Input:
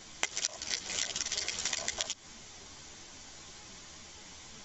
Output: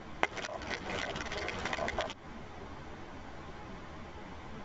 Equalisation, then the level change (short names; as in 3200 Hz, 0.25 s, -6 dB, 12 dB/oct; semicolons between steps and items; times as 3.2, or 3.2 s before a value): LPF 1400 Hz 12 dB/oct; +9.5 dB